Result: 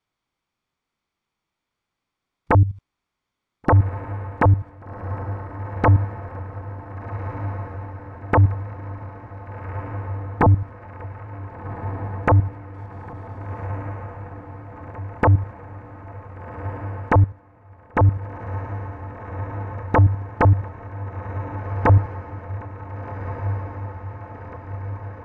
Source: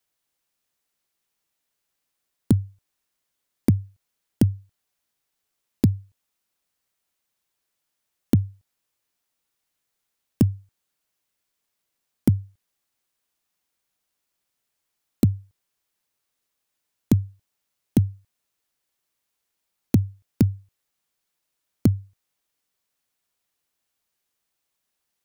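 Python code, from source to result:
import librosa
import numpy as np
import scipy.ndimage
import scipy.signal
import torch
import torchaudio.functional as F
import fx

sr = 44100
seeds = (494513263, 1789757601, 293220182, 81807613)

y = fx.low_shelf(x, sr, hz=62.0, db=8.5, at=(10.43, 12.28))
y = fx.spec_box(y, sr, start_s=12.71, length_s=0.97, low_hz=420.0, high_hz=1400.0, gain_db=8)
y = y + 0.34 * np.pad(y, (int(0.9 * sr / 1000.0), 0))[:len(y)]
y = fx.hpss(y, sr, part='percussive', gain_db=-4)
y = fx.level_steps(y, sr, step_db=16)
y = fx.fold_sine(y, sr, drive_db=17, ceiling_db=-12.0)
y = fx.spacing_loss(y, sr, db_at_10k=25)
y = fx.echo_diffused(y, sr, ms=1535, feedback_pct=67, wet_db=-10.5)
y = fx.upward_expand(y, sr, threshold_db=-35.0, expansion=1.5, at=(17.2, 18.08))
y = y * 10.0 ** (3.0 / 20.0)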